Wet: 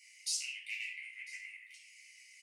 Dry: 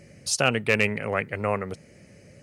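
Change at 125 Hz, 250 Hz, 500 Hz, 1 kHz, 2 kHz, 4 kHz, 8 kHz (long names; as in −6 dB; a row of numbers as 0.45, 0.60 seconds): below −40 dB, below −40 dB, below −40 dB, below −40 dB, −15.5 dB, −9.5 dB, −8.5 dB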